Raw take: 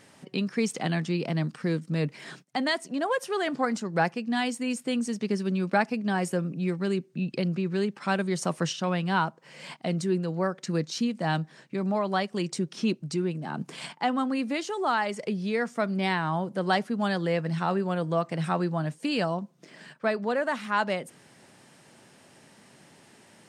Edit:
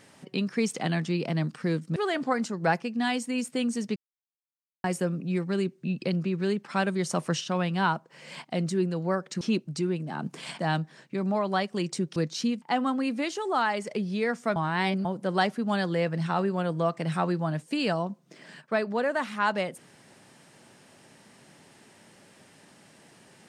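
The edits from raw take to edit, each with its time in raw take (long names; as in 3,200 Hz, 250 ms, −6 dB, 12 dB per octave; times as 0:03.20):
0:01.96–0:03.28: remove
0:05.28–0:06.16: silence
0:10.73–0:11.19: swap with 0:12.76–0:13.94
0:15.88–0:16.37: reverse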